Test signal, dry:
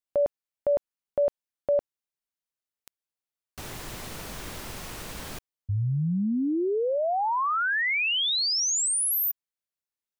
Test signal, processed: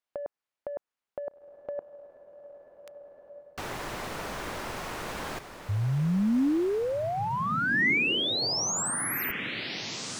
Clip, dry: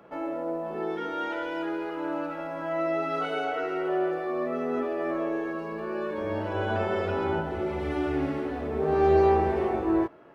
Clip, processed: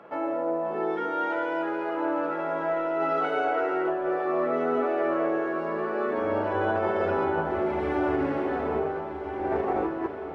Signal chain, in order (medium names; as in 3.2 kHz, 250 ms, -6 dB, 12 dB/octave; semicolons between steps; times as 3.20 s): dynamic bell 3.2 kHz, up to -6 dB, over -46 dBFS, Q 0.93; overdrive pedal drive 12 dB, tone 1.6 kHz, clips at -11 dBFS; compressor with a negative ratio -26 dBFS, ratio -0.5; echo that smears into a reverb 1503 ms, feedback 45%, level -9 dB